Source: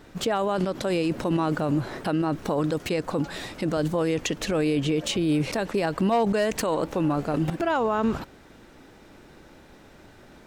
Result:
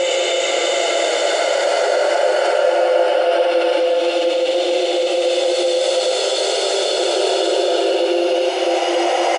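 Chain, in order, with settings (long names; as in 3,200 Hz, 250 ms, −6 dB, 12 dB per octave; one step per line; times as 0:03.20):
gliding playback speed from 82% → 141%
Butterworth high-pass 390 Hz 48 dB per octave
slap from a distant wall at 98 metres, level −8 dB
extreme stretch with random phases 8.3×, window 0.50 s, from 0:04.40
comb filter 1.4 ms, depth 48%
in parallel at −2 dB: compressor whose output falls as the input rises −30 dBFS, ratio −0.5
on the sum: Chebyshev low-pass filter 9,800 Hz, order 5
high-shelf EQ 4,400 Hz −9.5 dB
on a send at −12 dB: convolution reverb, pre-delay 3 ms
on the sum: level +8 dB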